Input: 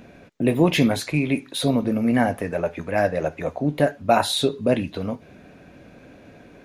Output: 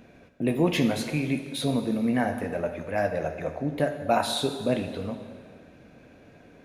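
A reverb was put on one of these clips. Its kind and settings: plate-style reverb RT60 1.9 s, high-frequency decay 0.95×, DRR 7 dB; gain -6 dB

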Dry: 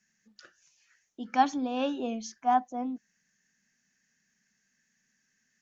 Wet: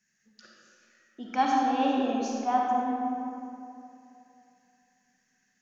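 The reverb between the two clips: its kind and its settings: digital reverb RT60 2.8 s, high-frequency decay 0.55×, pre-delay 10 ms, DRR -3 dB; gain -2 dB

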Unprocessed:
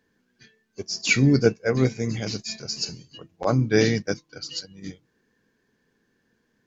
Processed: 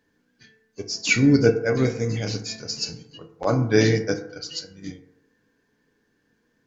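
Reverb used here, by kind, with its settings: FDN reverb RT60 0.84 s, low-frequency decay 0.75×, high-frequency decay 0.35×, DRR 5.5 dB

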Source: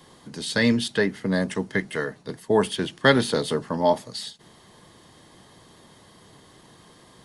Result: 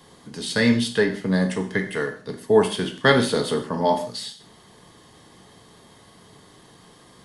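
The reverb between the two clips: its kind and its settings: non-linear reverb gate 0.19 s falling, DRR 4.5 dB

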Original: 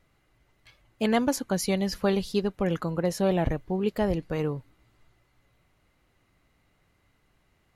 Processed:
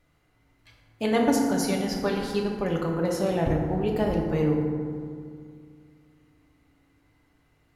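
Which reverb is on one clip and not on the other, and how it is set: FDN reverb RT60 2.2 s, low-frequency decay 1.25×, high-frequency decay 0.4×, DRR -1 dB; gain -2 dB

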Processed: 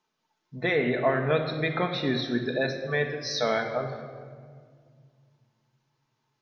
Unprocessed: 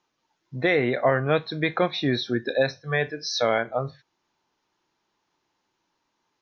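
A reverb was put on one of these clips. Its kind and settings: shoebox room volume 3400 m³, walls mixed, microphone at 1.5 m; gain -4.5 dB

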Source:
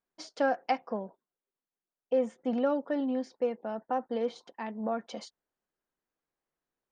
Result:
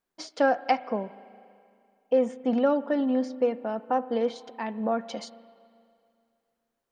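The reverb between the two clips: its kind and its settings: spring tank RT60 2.4 s, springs 35/39 ms, chirp 50 ms, DRR 16.5 dB; gain +5 dB

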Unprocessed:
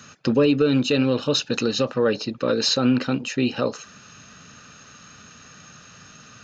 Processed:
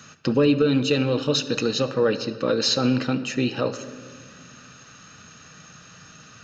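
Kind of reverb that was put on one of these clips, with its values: shoebox room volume 2600 m³, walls mixed, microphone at 0.61 m; gain -1 dB

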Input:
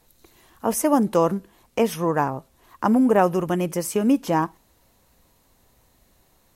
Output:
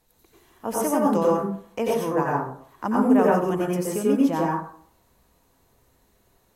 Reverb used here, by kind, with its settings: plate-style reverb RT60 0.54 s, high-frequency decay 0.45×, pre-delay 80 ms, DRR -4 dB; gain -7 dB

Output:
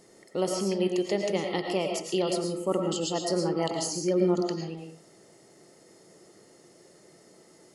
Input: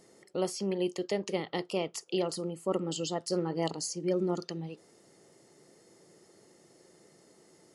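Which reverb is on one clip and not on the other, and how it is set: digital reverb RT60 0.46 s, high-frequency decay 0.7×, pre-delay 70 ms, DRR 2.5 dB; gain +3 dB

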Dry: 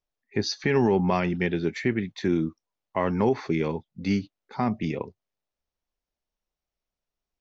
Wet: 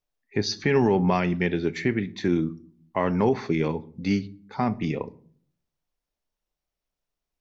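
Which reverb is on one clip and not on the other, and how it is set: shoebox room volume 580 m³, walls furnished, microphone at 0.38 m; gain +1 dB

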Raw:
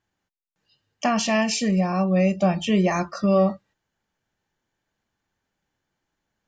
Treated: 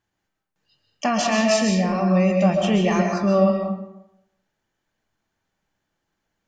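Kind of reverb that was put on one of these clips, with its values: digital reverb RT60 0.82 s, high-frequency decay 0.65×, pre-delay 95 ms, DRR 2 dB

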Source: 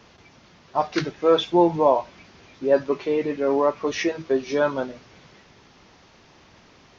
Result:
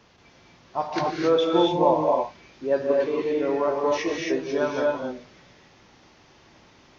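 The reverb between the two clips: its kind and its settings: non-linear reverb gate 0.3 s rising, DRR -1 dB; gain -5 dB

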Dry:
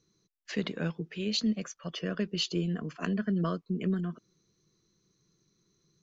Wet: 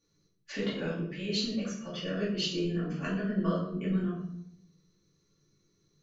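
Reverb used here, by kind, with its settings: shoebox room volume 140 m³, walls mixed, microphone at 2.4 m; gain -8.5 dB

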